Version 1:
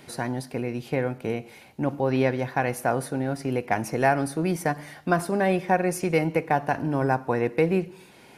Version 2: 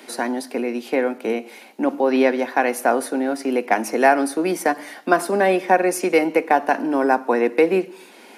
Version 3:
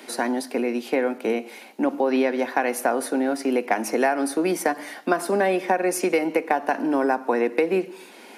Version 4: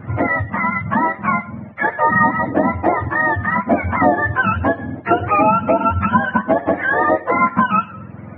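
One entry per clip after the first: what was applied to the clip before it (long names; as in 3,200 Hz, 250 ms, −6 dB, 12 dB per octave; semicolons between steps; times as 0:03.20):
Butterworth high-pass 220 Hz 48 dB per octave; level +6.5 dB
downward compressor, threshold −17 dBFS, peak gain reduction 8 dB
frequency axis turned over on the octave scale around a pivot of 700 Hz; level +8.5 dB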